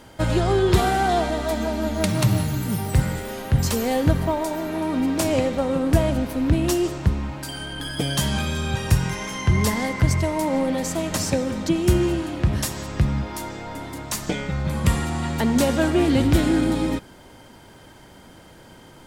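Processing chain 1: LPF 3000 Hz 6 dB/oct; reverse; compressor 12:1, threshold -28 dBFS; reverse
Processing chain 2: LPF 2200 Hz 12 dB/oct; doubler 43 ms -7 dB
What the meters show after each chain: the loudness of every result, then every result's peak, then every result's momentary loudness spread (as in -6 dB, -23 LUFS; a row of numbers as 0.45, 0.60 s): -33.0, -22.0 LUFS; -19.0, -4.5 dBFS; 4, 10 LU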